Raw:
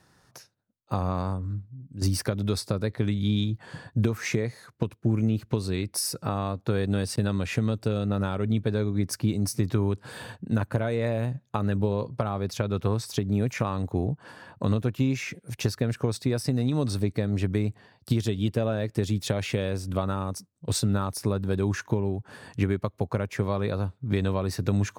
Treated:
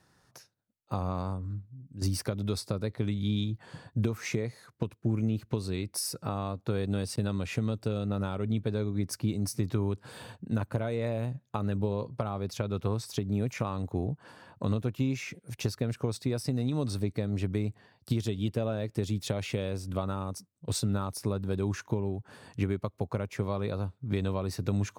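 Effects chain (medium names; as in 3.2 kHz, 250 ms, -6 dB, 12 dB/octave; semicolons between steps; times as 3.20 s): dynamic bell 1.7 kHz, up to -5 dB, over -52 dBFS, Q 4.3; trim -4.5 dB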